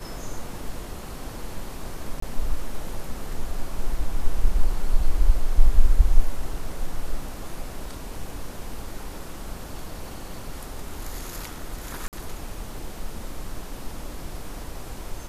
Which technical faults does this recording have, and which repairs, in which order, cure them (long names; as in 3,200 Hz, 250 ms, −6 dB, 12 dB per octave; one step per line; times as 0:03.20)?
0:02.20–0:02.22: drop-out 24 ms
0:12.08–0:12.13: drop-out 48 ms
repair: repair the gap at 0:02.20, 24 ms
repair the gap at 0:12.08, 48 ms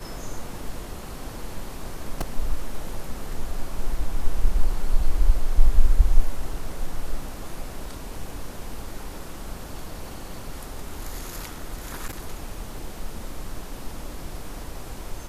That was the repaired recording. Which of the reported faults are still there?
none of them is left